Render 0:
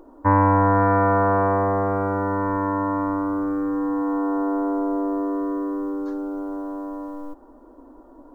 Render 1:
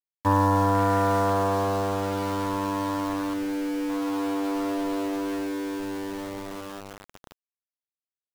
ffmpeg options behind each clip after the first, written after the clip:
ffmpeg -i in.wav -af "afwtdn=0.0562,aeval=exprs='val(0)*gte(abs(val(0)),0.0398)':channel_layout=same,volume=-4dB" out.wav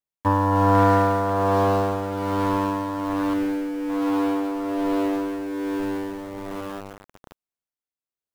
ffmpeg -i in.wav -filter_complex "[0:a]tremolo=f=1.2:d=0.5,asplit=2[link_01][link_02];[link_02]adynamicsmooth=sensitivity=4:basefreq=1800,volume=0dB[link_03];[link_01][link_03]amix=inputs=2:normalize=0" out.wav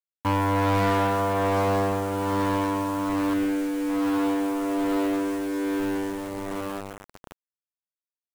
ffmpeg -i in.wav -af "acrusher=bits=6:mix=0:aa=0.000001,asoftclip=type=tanh:threshold=-21.5dB,volume=2dB" out.wav

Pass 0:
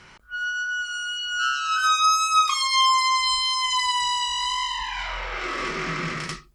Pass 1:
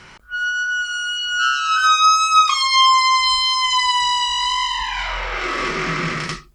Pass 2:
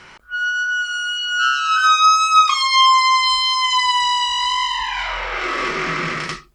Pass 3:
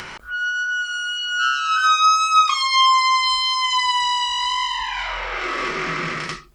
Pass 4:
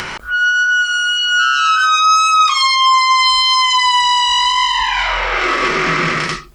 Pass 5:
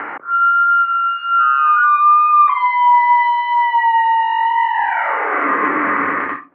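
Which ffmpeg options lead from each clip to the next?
ffmpeg -i in.wav -filter_complex "[0:a]acrossover=split=7400[link_01][link_02];[link_02]acompressor=threshold=-52dB:ratio=4:attack=1:release=60[link_03];[link_01][link_03]amix=inputs=2:normalize=0,volume=6dB" out.wav
ffmpeg -i in.wav -af "bass=frequency=250:gain=-6,treble=frequency=4000:gain=-3,volume=1dB" out.wav
ffmpeg -i in.wav -af "acompressor=mode=upward:threshold=-22dB:ratio=2.5,volume=-2.5dB" out.wav
ffmpeg -i in.wav -af "alimiter=level_in=14dB:limit=-1dB:release=50:level=0:latency=1,volume=-4.5dB" out.wav
ffmpeg -i in.wav -af "highpass=frequency=340:width_type=q:width=0.5412,highpass=frequency=340:width_type=q:width=1.307,lowpass=frequency=2000:width_type=q:width=0.5176,lowpass=frequency=2000:width_type=q:width=0.7071,lowpass=frequency=2000:width_type=q:width=1.932,afreqshift=-76,volume=1dB" out.wav

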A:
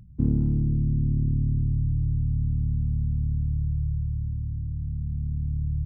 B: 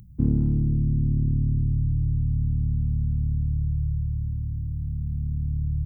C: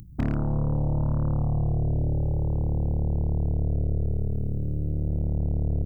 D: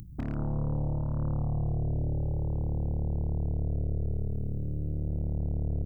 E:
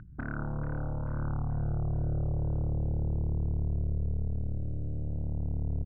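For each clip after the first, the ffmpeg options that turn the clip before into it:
ffmpeg -i in.wav -af "aemphasis=mode=production:type=50fm,volume=1.5dB" out.wav
ffmpeg -i in.wav -af "acompressor=threshold=-26dB:ratio=2.5,aeval=exprs='0.119*(cos(1*acos(clip(val(0)/0.119,-1,1)))-cos(1*PI/2))+0.0188*(cos(8*acos(clip(val(0)/0.119,-1,1)))-cos(8*PI/2))':channel_layout=same,volume=1.5dB" out.wav
ffmpeg -i in.wav -af "alimiter=level_in=0.5dB:limit=-24dB:level=0:latency=1:release=168,volume=-0.5dB" out.wav
ffmpeg -i in.wav -filter_complex "[0:a]lowpass=frequency=1500:width_type=q:width=9.7,asplit=2[link_01][link_02];[link_02]aecho=0:1:437|874|1311|1748|2185:0.355|0.16|0.0718|0.0323|0.0145[link_03];[link_01][link_03]amix=inputs=2:normalize=0,volume=-4dB" out.wav

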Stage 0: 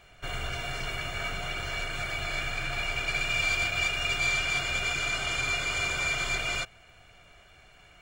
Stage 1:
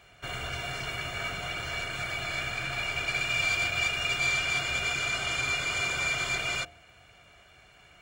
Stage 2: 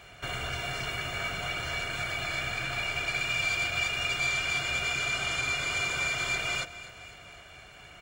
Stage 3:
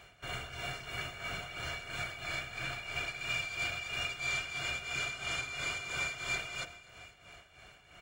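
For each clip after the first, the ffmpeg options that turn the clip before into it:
ffmpeg -i in.wav -af "highpass=55,bandreject=frequency=77.79:width_type=h:width=4,bandreject=frequency=155.58:width_type=h:width=4,bandreject=frequency=233.37:width_type=h:width=4,bandreject=frequency=311.16:width_type=h:width=4,bandreject=frequency=388.95:width_type=h:width=4,bandreject=frequency=466.74:width_type=h:width=4,bandreject=frequency=544.53:width_type=h:width=4,bandreject=frequency=622.32:width_type=h:width=4,bandreject=frequency=700.11:width_type=h:width=4,bandreject=frequency=777.9:width_type=h:width=4,bandreject=frequency=855.69:width_type=h:width=4" out.wav
ffmpeg -i in.wav -af "acompressor=threshold=-46dB:ratio=1.5,aecho=1:1:252|504|756|1008|1260|1512:0.158|0.0935|0.0552|0.0326|0.0192|0.0113,volume=6dB" out.wav
ffmpeg -i in.wav -af "tremolo=f=3:d=0.66,volume=-4dB" out.wav

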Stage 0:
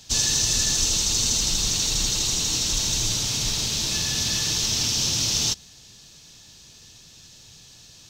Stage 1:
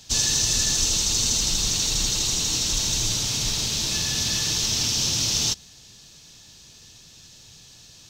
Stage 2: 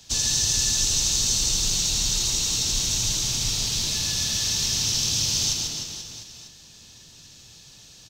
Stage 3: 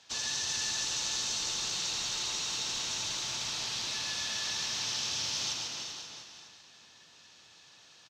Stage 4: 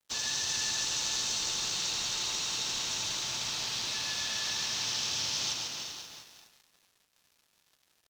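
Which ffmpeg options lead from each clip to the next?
ffmpeg -i in.wav -af anull out.wav
ffmpeg -i in.wav -filter_complex "[0:a]aecho=1:1:140|301|486.2|699.1|943.9:0.631|0.398|0.251|0.158|0.1,acrossover=split=150|3000[link_01][link_02][link_03];[link_02]acompressor=threshold=-34dB:ratio=6[link_04];[link_01][link_04][link_03]amix=inputs=3:normalize=0,volume=-2dB" out.wav
ffmpeg -i in.wav -af "bandpass=frequency=1300:width_type=q:width=0.86:csg=0,aecho=1:1:384:0.376" out.wav
ffmpeg -i in.wav -af "aeval=exprs='sgn(val(0))*max(abs(val(0))-0.00224,0)':channel_layout=same,volume=2dB" out.wav

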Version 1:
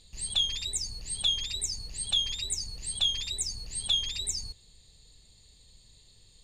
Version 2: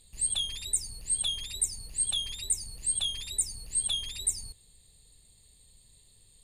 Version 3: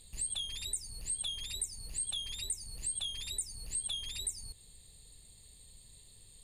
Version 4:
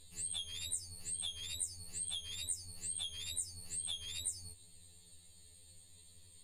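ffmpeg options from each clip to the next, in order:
ffmpeg -i in.wav -af "highshelf=frequency=7700:width_type=q:width=3:gain=9.5,volume=-3dB" out.wav
ffmpeg -i in.wav -af "acompressor=threshold=-40dB:ratio=3,volume=2.5dB" out.wav
ffmpeg -i in.wav -af "afftfilt=real='re*2*eq(mod(b,4),0)':imag='im*2*eq(mod(b,4),0)':win_size=2048:overlap=0.75" out.wav

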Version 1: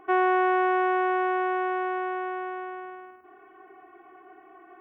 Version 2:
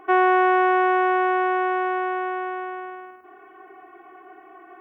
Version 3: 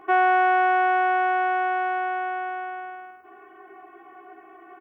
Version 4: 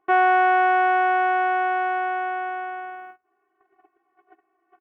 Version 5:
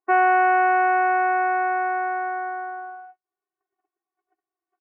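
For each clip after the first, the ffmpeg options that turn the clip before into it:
ffmpeg -i in.wav -af "lowshelf=frequency=210:gain=-6,volume=5.5dB" out.wav
ffmpeg -i in.wav -filter_complex "[0:a]asplit=2[link_01][link_02];[link_02]adelay=15,volume=-5dB[link_03];[link_01][link_03]amix=inputs=2:normalize=0,volume=-2dB" out.wav
ffmpeg -i in.wav -af "agate=range=-25dB:threshold=-42dB:ratio=16:detection=peak,volume=1.5dB" out.wav
ffmpeg -i in.wav -af "afftdn=noise_reduction=21:noise_floor=-29" out.wav

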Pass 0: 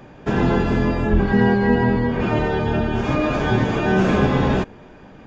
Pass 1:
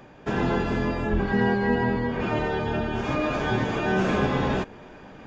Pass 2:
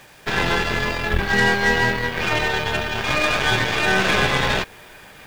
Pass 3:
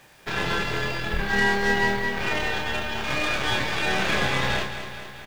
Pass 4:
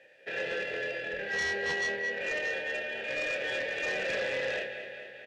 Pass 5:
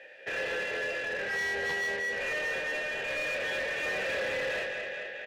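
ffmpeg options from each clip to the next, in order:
ffmpeg -i in.wav -af "lowshelf=frequency=340:gain=-5,areverse,acompressor=mode=upward:threshold=-34dB:ratio=2.5,areverse,volume=-3.5dB" out.wav
ffmpeg -i in.wav -af "equalizer=frequency=250:width_type=o:width=1:gain=-9,equalizer=frequency=2000:width_type=o:width=1:gain=8,equalizer=frequency=4000:width_type=o:width=1:gain=11,acrusher=bits=7:mix=0:aa=0.000001,aeval=exprs='0.335*(cos(1*acos(clip(val(0)/0.335,-1,1)))-cos(1*PI/2))+0.0119*(cos(5*acos(clip(val(0)/0.335,-1,1)))-cos(5*PI/2))+0.0299*(cos(7*acos(clip(val(0)/0.335,-1,1)))-cos(7*PI/2))+0.0211*(cos(8*acos(clip(val(0)/0.335,-1,1)))-cos(8*PI/2))':channel_layout=same,volume=4.5dB" out.wav
ffmpeg -i in.wav -filter_complex "[0:a]asplit=2[link_01][link_02];[link_02]adelay=30,volume=-4.5dB[link_03];[link_01][link_03]amix=inputs=2:normalize=0,asplit=2[link_04][link_05];[link_05]aecho=0:1:219|438|657|876|1095|1314|1533:0.299|0.179|0.107|0.0645|0.0387|0.0232|0.0139[link_06];[link_04][link_06]amix=inputs=2:normalize=0,volume=-7dB" out.wav
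ffmpeg -i in.wav -filter_complex "[0:a]asplit=3[link_01][link_02][link_03];[link_01]bandpass=frequency=530:width_type=q:width=8,volume=0dB[link_04];[link_02]bandpass=frequency=1840:width_type=q:width=8,volume=-6dB[link_05];[link_03]bandpass=frequency=2480:width_type=q:width=8,volume=-9dB[link_06];[link_04][link_05][link_06]amix=inputs=3:normalize=0,aeval=exprs='0.0841*sin(PI/2*2.51*val(0)/0.0841)':channel_layout=same,volume=-6dB" out.wav
ffmpeg -i in.wav -filter_complex "[0:a]asplit=2[link_01][link_02];[link_02]highpass=frequency=720:poles=1,volume=16dB,asoftclip=type=tanh:threshold=-27dB[link_03];[link_01][link_03]amix=inputs=2:normalize=0,lowpass=frequency=2700:poles=1,volume=-6dB" out.wav

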